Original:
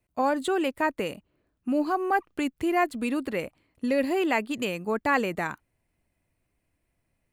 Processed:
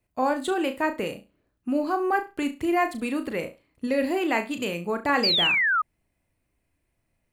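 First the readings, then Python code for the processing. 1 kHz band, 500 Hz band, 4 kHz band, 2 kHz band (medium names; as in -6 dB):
+1.0 dB, +0.5 dB, +13.5 dB, +5.0 dB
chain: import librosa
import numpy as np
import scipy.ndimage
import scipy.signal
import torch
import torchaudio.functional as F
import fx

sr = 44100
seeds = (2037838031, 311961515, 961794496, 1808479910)

y = fx.room_flutter(x, sr, wall_m=6.0, rt60_s=0.26)
y = fx.spec_paint(y, sr, seeds[0], shape='fall', start_s=5.23, length_s=0.59, low_hz=1200.0, high_hz=5000.0, level_db=-22.0)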